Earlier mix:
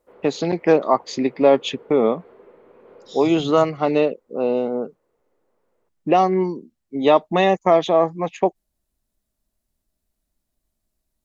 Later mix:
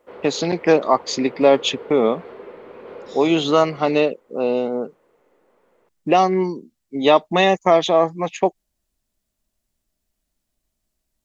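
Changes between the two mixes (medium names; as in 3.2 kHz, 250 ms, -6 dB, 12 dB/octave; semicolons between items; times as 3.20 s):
second voice -10.0 dB; background +9.5 dB; master: add treble shelf 2.3 kHz +8.5 dB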